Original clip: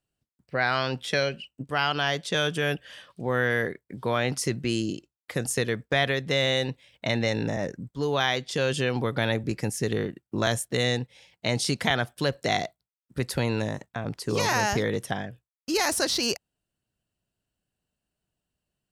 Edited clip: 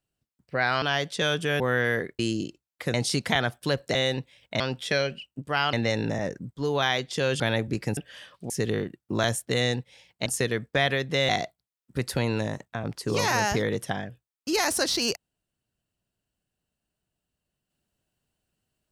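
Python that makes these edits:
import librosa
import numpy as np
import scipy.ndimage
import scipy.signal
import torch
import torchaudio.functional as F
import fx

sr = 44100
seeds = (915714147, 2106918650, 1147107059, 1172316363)

y = fx.edit(x, sr, fx.move(start_s=0.82, length_s=1.13, to_s=7.11),
    fx.move(start_s=2.73, length_s=0.53, to_s=9.73),
    fx.cut(start_s=3.85, length_s=0.83),
    fx.swap(start_s=5.43, length_s=1.03, other_s=11.49, other_length_s=1.01),
    fx.cut(start_s=8.78, length_s=0.38), tone=tone)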